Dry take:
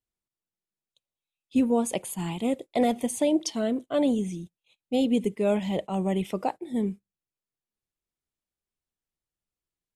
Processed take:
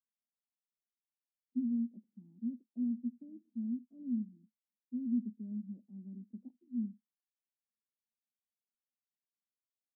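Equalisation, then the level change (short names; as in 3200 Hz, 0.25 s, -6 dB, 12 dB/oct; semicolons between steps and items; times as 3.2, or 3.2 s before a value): Butterworth band-pass 230 Hz, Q 5.6; -6.5 dB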